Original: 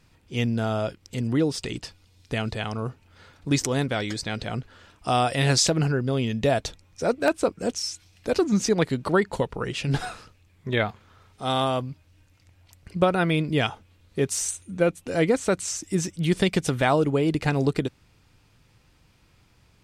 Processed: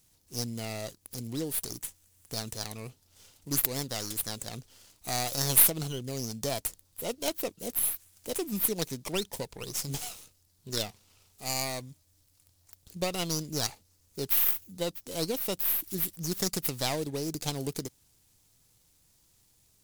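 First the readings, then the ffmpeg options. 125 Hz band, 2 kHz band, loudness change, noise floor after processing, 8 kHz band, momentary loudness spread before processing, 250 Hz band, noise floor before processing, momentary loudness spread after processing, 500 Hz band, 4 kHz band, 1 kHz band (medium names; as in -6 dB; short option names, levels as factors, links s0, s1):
-11.5 dB, -12.0 dB, -5.0 dB, -67 dBFS, 0.0 dB, 12 LU, -12.0 dB, -60 dBFS, 13 LU, -11.5 dB, -4.0 dB, -12.0 dB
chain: -filter_complex "[0:a]acrossover=split=1000[s0][s1];[s1]aeval=exprs='abs(val(0))':c=same[s2];[s0][s2]amix=inputs=2:normalize=0,crystalizer=i=8:c=0,volume=0.237"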